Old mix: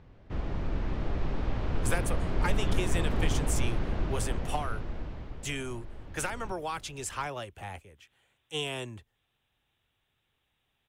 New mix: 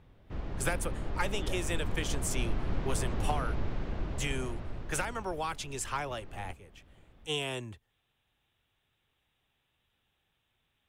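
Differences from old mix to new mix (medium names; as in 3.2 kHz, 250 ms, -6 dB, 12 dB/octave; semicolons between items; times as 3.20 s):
speech: entry -1.25 s; background -4.5 dB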